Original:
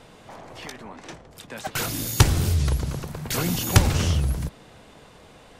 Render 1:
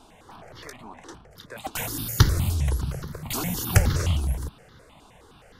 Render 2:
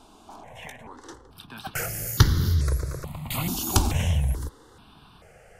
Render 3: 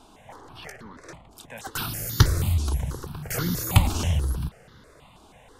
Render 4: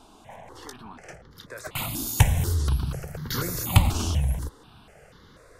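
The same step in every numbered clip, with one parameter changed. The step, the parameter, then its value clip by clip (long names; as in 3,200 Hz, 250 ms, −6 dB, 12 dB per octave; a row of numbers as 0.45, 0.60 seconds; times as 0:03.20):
step-sequenced phaser, speed: 9.6, 2.3, 6.2, 4.1 Hertz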